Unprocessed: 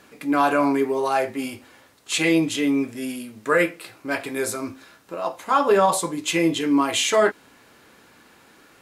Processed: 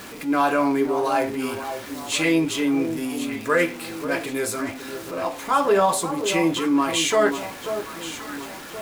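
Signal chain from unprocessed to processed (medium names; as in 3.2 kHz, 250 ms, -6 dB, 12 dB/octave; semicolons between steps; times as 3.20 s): jump at every zero crossing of -33 dBFS; echo whose repeats swap between lows and highs 537 ms, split 1.1 kHz, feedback 63%, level -8.5 dB; trim -1.5 dB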